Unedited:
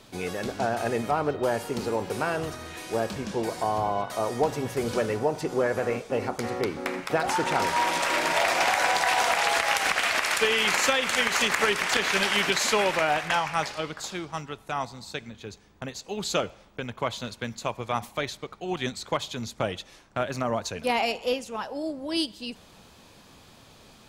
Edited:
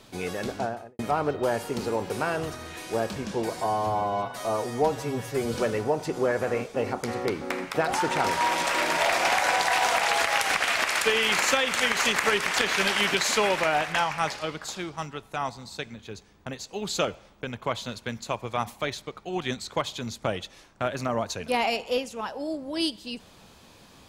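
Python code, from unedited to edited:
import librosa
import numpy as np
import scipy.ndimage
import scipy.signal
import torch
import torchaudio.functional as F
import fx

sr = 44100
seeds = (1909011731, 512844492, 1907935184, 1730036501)

y = fx.studio_fade_out(x, sr, start_s=0.49, length_s=0.5)
y = fx.edit(y, sr, fx.stretch_span(start_s=3.61, length_s=1.29, factor=1.5), tone=tone)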